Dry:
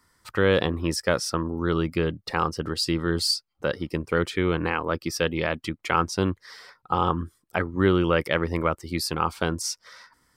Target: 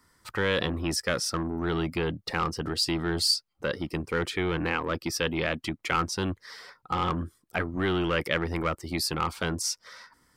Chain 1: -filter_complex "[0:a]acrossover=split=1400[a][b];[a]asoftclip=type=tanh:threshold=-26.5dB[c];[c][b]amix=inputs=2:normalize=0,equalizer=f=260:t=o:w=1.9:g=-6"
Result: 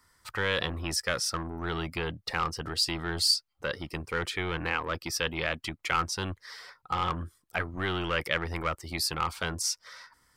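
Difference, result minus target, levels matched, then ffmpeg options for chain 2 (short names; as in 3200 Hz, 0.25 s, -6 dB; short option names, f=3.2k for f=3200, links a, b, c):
250 Hz band -5.5 dB
-filter_complex "[0:a]acrossover=split=1400[a][b];[a]asoftclip=type=tanh:threshold=-26.5dB[c];[c][b]amix=inputs=2:normalize=0,equalizer=f=260:t=o:w=1.9:g=2.5"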